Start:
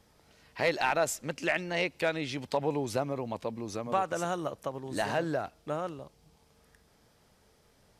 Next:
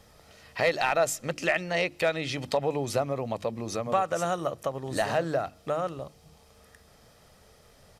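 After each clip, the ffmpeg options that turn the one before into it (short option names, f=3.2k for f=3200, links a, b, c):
-filter_complex "[0:a]bandreject=f=50:t=h:w=6,bandreject=f=100:t=h:w=6,bandreject=f=150:t=h:w=6,bandreject=f=200:t=h:w=6,bandreject=f=250:t=h:w=6,bandreject=f=300:t=h:w=6,bandreject=f=350:t=h:w=6,aecho=1:1:1.6:0.32,asplit=2[a][b];[b]acompressor=threshold=-38dB:ratio=6,volume=2.5dB[c];[a][c]amix=inputs=2:normalize=0"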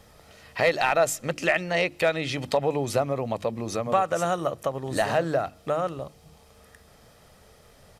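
-af "equalizer=f=5.3k:t=o:w=0.77:g=-2.5,volume=3dB"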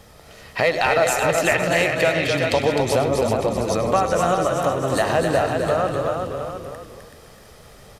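-filter_complex "[0:a]asplit=2[a][b];[b]aecho=0:1:99|378|708:0.224|0.473|0.237[c];[a][c]amix=inputs=2:normalize=0,acompressor=threshold=-26dB:ratio=1.5,asplit=2[d][e];[e]asplit=4[f][g][h][i];[f]adelay=257,afreqshift=-39,volume=-5dB[j];[g]adelay=514,afreqshift=-78,volume=-14.9dB[k];[h]adelay=771,afreqshift=-117,volume=-24.8dB[l];[i]adelay=1028,afreqshift=-156,volume=-34.7dB[m];[j][k][l][m]amix=inputs=4:normalize=0[n];[d][n]amix=inputs=2:normalize=0,volume=6dB"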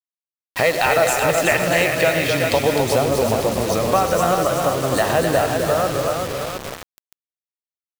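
-af "acrusher=bits=4:mix=0:aa=0.000001,volume=1.5dB"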